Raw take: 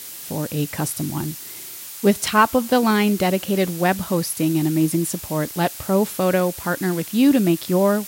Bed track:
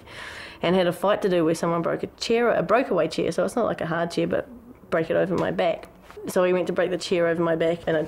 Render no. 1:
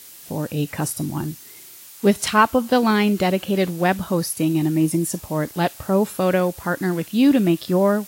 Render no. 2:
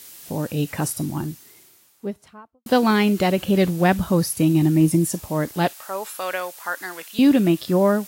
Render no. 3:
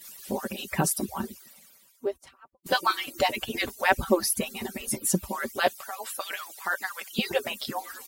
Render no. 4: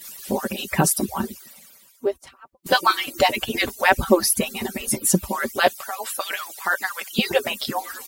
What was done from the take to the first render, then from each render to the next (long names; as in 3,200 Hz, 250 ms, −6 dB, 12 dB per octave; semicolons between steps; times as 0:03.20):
noise reduction from a noise print 7 dB
0:00.86–0:02.66: fade out and dull; 0:03.38–0:05.08: low-shelf EQ 130 Hz +11 dB; 0:05.73–0:07.19: high-pass filter 880 Hz
harmonic-percussive split with one part muted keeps percussive; comb filter 5.2 ms, depth 57%
level +6.5 dB; brickwall limiter −2 dBFS, peak gain reduction 2 dB